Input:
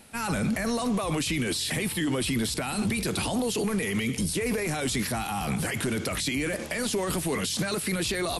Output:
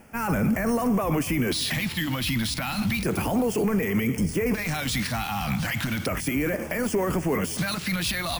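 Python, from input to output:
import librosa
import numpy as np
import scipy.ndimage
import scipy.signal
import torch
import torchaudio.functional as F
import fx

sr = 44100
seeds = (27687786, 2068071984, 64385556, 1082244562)

y = np.repeat(scipy.signal.resample_poly(x, 1, 3), 3)[:len(x)]
y = fx.filter_lfo_notch(y, sr, shape='square', hz=0.33, low_hz=410.0, high_hz=3900.0, q=0.72)
y = fx.echo_feedback(y, sr, ms=217, feedback_pct=60, wet_db=-21.0)
y = y * librosa.db_to_amplitude(4.0)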